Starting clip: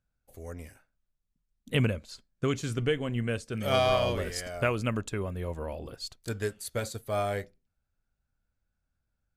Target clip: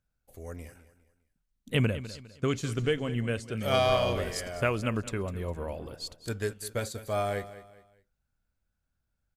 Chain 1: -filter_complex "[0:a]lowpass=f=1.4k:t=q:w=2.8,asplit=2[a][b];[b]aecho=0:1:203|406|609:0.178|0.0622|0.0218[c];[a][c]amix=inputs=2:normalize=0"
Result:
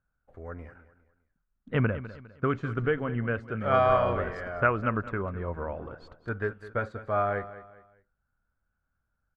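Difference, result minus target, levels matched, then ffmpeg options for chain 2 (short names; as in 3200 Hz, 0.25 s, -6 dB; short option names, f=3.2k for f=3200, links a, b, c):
1000 Hz band +4.0 dB
-filter_complex "[0:a]asplit=2[a][b];[b]aecho=0:1:203|406|609:0.178|0.0622|0.0218[c];[a][c]amix=inputs=2:normalize=0"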